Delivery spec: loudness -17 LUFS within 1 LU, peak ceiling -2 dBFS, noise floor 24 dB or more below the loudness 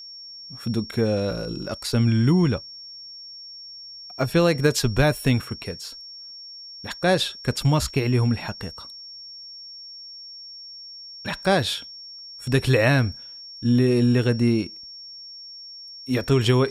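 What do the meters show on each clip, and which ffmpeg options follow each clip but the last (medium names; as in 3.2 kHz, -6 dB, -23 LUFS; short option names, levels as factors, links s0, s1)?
steady tone 5.5 kHz; tone level -38 dBFS; loudness -22.5 LUFS; peak level -5.5 dBFS; loudness target -17.0 LUFS
-> -af "bandreject=f=5500:w=30"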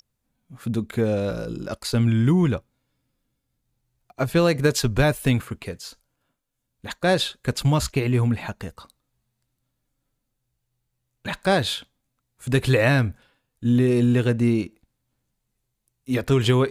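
steady tone not found; loudness -22.0 LUFS; peak level -5.5 dBFS; loudness target -17.0 LUFS
-> -af "volume=1.78,alimiter=limit=0.794:level=0:latency=1"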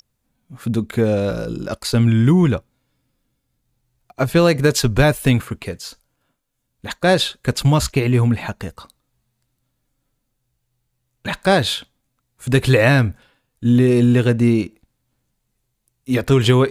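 loudness -17.5 LUFS; peak level -2.0 dBFS; noise floor -73 dBFS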